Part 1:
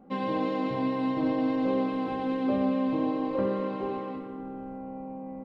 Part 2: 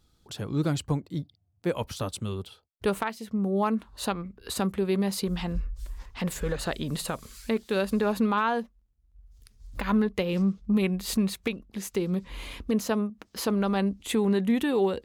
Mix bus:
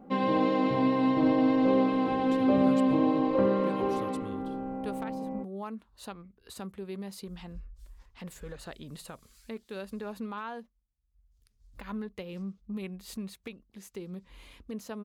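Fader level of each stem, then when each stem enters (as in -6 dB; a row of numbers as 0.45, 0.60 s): +3.0, -13.0 dB; 0.00, 2.00 s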